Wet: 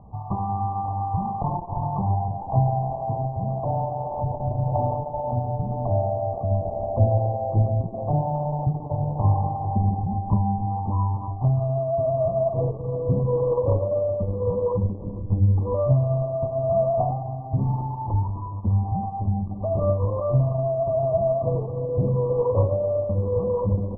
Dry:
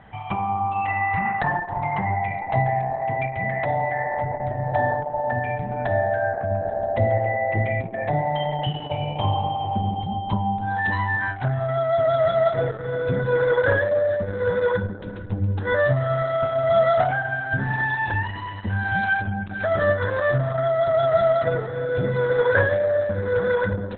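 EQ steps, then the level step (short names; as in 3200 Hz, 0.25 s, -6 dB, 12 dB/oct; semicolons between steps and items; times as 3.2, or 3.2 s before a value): brick-wall FIR low-pass 1200 Hz; air absorption 190 m; low shelf 190 Hz +11 dB; -3.5 dB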